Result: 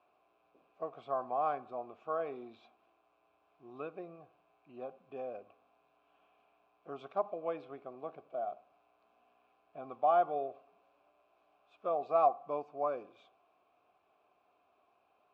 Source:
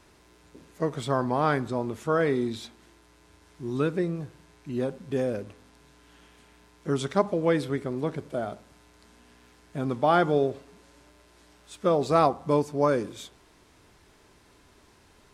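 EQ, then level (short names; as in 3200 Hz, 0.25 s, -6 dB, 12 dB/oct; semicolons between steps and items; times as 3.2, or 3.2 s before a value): vowel filter a; Bessel low-pass 3100 Hz, order 2; 0.0 dB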